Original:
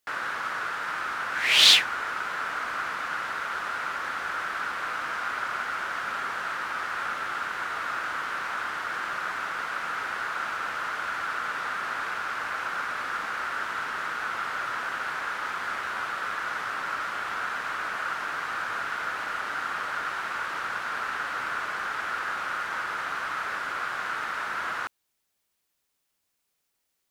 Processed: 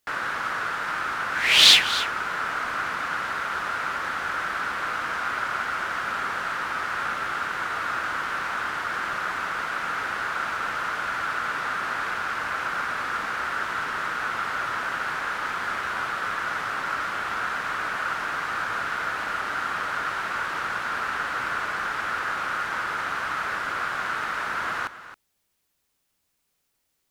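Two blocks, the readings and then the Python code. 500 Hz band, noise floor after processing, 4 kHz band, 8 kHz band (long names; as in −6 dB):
+3.5 dB, −75 dBFS, +2.5 dB, +2.5 dB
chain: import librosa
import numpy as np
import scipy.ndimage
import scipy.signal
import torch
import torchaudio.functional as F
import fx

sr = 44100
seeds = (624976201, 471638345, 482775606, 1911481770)

y = fx.low_shelf(x, sr, hz=230.0, db=6.5)
y = y + 10.0 ** (-14.0 / 20.0) * np.pad(y, (int(271 * sr / 1000.0), 0))[:len(y)]
y = y * 10.0 ** (2.5 / 20.0)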